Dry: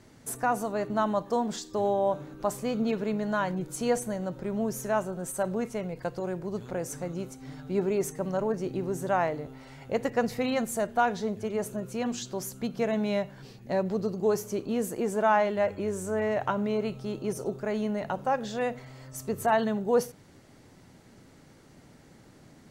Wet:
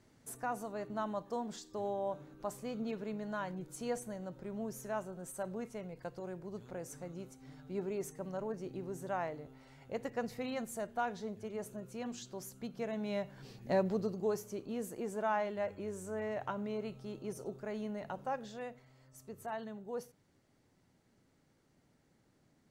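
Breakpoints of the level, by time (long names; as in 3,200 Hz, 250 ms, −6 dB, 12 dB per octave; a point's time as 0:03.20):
0:12.96 −11 dB
0:13.69 −2 dB
0:14.46 −10.5 dB
0:18.33 −10.5 dB
0:18.83 −17 dB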